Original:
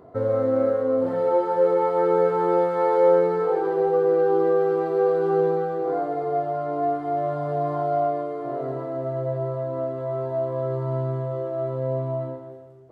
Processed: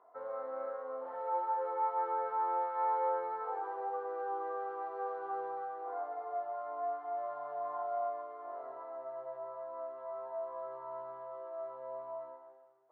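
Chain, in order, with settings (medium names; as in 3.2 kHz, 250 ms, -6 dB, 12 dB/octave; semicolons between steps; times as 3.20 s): ladder band-pass 1.1 kHz, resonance 45%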